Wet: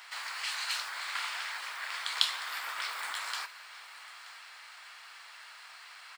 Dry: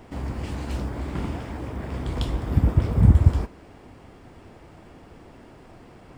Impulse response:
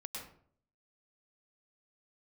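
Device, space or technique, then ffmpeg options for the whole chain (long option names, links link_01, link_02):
headphones lying on a table: -af "highpass=frequency=1300:width=0.5412,highpass=frequency=1300:width=1.3066,equalizer=frequency=4200:width_type=o:width=0.29:gain=8.5,aecho=1:1:928:0.133,volume=8.5dB"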